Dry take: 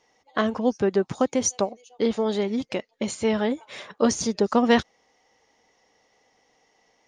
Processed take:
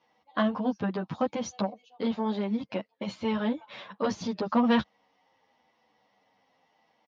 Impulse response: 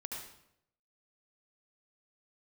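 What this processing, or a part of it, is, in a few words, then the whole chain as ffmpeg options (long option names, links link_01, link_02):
barber-pole flanger into a guitar amplifier: -filter_complex "[0:a]asplit=2[link_01][link_02];[link_02]adelay=9.7,afreqshift=-0.88[link_03];[link_01][link_03]amix=inputs=2:normalize=1,asoftclip=type=tanh:threshold=-16dB,highpass=96,equalizer=frequency=200:width_type=q:width=4:gain=4,equalizer=frequency=400:width_type=q:width=4:gain=-9,equalizer=frequency=1000:width_type=q:width=4:gain=4,equalizer=frequency=2000:width_type=q:width=4:gain=-4,lowpass=frequency=4200:width=0.5412,lowpass=frequency=4200:width=1.3066,asettb=1/sr,asplit=3[link_04][link_05][link_06];[link_04]atrim=end=2.144[link_07];[link_05]atrim=start=2.14:end=3.05,asetpts=PTS-STARTPTS,afade=type=in:duration=0.004:curve=qsin,afade=type=out:start_time=0.906:duration=0.004:curve=qsin,equalizer=frequency=3500:width_type=o:width=0.98:gain=-4[link_08];[link_06]atrim=start=3.046[link_09];[link_07][link_08]acrossfade=duration=0.004:curve1=hsin:curve2=qsin[link_10];[link_10][link_09]acrossfade=duration=0.004:curve1=qsin:curve2=hsin"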